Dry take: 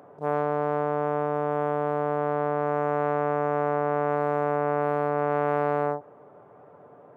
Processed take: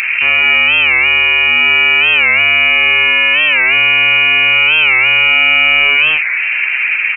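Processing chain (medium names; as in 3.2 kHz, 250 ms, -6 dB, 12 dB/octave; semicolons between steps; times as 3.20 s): in parallel at -2 dB: compression, threshold -40 dBFS, peak gain reduction 18.5 dB; on the sum: hard clipper -28 dBFS, distortion -4 dB; on a send: multi-tap echo 63/127/214 ms -8.5/-7.5/-6.5 dB; on the sum: frequency inversion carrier 2.9 kHz; loudness maximiser +29.5 dB; warped record 45 rpm, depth 160 cents; trim -1 dB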